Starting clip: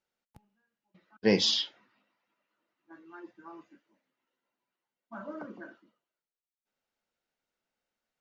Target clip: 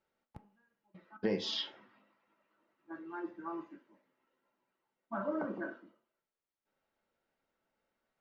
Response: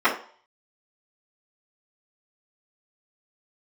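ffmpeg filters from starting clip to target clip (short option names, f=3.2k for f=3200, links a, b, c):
-filter_complex "[0:a]lowpass=f=1.6k:p=1,acompressor=threshold=-37dB:ratio=6,asplit=2[a][b];[1:a]atrim=start_sample=2205[c];[b][c]afir=irnorm=-1:irlink=0,volume=-25.5dB[d];[a][d]amix=inputs=2:normalize=0,volume=5.5dB"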